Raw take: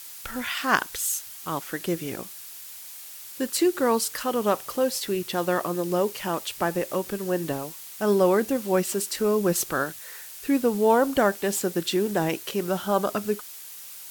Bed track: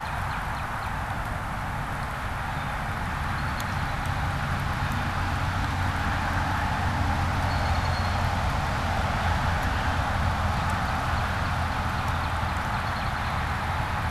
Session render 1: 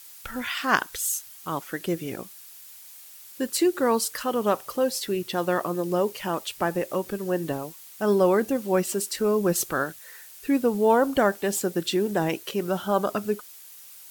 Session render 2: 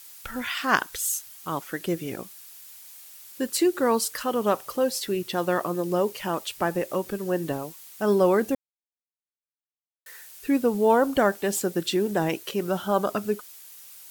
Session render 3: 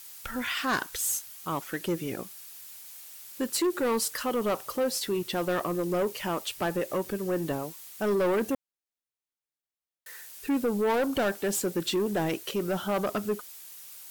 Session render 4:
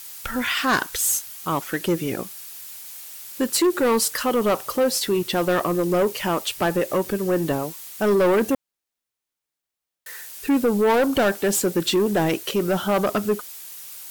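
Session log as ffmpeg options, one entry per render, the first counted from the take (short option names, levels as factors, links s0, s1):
-af "afftdn=nr=6:nf=-42"
-filter_complex "[0:a]asplit=3[s0][s1][s2];[s0]atrim=end=8.55,asetpts=PTS-STARTPTS,afade=t=out:st=8.546:d=0.004:c=hsin[s3];[s1]atrim=start=8.55:end=10.06,asetpts=PTS-STARTPTS,volume=0[s4];[s2]atrim=start=10.06,asetpts=PTS-STARTPTS,afade=t=in:d=0.004:c=hsin[s5];[s3][s4][s5]concat=n=3:v=0:a=1"
-filter_complex "[0:a]acrossover=split=2100[s0][s1];[s1]acrusher=bits=4:mode=log:mix=0:aa=0.000001[s2];[s0][s2]amix=inputs=2:normalize=0,asoftclip=type=tanh:threshold=0.0841"
-af "volume=2.37"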